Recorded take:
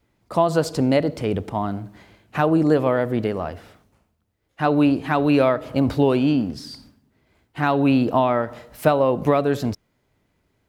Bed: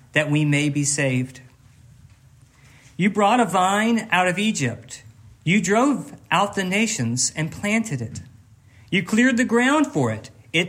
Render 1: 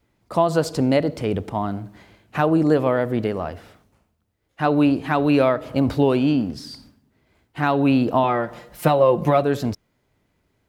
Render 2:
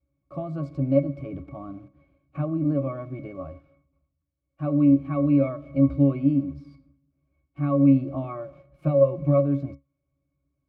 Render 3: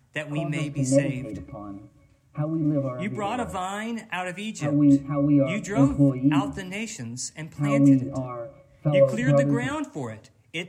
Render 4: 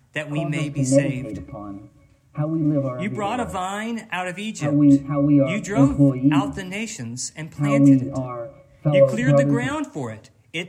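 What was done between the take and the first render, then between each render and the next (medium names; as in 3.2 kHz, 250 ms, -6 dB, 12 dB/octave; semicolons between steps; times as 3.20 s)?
8.23–9.43 s: comb 5.7 ms
in parallel at -6 dB: bit crusher 6-bit; on the sum: pitch-class resonator C#, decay 0.17 s
add bed -11.5 dB
trim +3.5 dB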